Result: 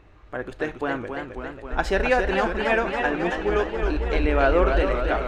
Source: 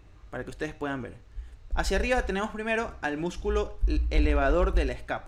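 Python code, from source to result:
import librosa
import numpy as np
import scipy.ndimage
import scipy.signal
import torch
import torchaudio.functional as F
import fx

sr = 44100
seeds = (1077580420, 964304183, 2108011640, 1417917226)

y = fx.bass_treble(x, sr, bass_db=-7, treble_db=-13)
y = fx.echo_warbled(y, sr, ms=272, feedback_pct=73, rate_hz=2.8, cents=157, wet_db=-6.0)
y = F.gain(torch.from_numpy(y), 6.0).numpy()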